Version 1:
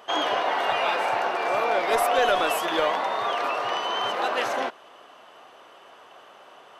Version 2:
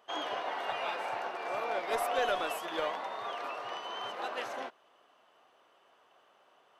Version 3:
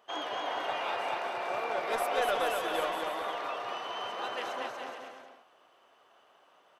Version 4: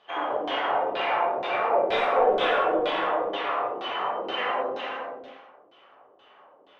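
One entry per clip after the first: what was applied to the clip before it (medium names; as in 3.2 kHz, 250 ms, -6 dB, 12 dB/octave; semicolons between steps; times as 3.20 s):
upward expansion 1.5:1, over -33 dBFS; trim -8.5 dB
bouncing-ball echo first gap 240 ms, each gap 0.75×, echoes 5
LFO low-pass saw down 2.1 Hz 270–4000 Hz; gated-style reverb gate 230 ms falling, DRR -4.5 dB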